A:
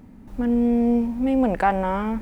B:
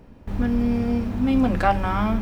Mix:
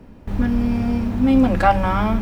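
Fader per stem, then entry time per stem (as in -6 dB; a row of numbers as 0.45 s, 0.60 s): -5.0 dB, +3.0 dB; 0.00 s, 0.00 s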